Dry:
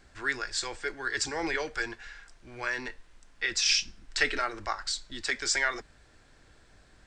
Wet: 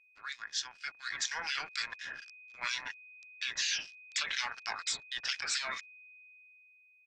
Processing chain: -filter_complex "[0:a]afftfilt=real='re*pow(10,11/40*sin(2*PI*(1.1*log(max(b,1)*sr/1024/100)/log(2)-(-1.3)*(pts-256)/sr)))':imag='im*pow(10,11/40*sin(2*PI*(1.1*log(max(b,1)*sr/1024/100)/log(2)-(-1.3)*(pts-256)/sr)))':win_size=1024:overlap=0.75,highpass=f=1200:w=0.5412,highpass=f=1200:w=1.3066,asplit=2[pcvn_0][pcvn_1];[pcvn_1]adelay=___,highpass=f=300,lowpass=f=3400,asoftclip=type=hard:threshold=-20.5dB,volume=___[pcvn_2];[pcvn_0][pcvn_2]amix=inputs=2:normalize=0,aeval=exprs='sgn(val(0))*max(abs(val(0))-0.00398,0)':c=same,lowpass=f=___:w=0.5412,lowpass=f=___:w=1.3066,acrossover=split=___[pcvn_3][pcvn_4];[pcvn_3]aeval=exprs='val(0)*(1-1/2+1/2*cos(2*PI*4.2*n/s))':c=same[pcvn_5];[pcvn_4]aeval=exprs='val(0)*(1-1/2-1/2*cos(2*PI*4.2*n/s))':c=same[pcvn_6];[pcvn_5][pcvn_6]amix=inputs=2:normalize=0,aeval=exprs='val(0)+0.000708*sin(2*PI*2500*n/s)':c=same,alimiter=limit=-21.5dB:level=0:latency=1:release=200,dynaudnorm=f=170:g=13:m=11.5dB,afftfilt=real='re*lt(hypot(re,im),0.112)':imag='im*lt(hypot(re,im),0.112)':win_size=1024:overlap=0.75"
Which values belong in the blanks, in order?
180, -29dB, 5900, 5900, 1800